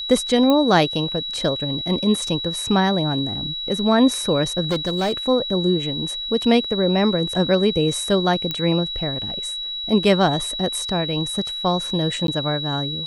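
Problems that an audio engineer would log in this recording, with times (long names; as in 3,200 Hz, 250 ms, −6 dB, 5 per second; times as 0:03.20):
whistle 3,900 Hz −26 dBFS
0:00.50: click −8 dBFS
0:04.71–0:05.13: clipping −17 dBFS
0:08.51: click −10 dBFS
0:12.27–0:12.28: drop-out 12 ms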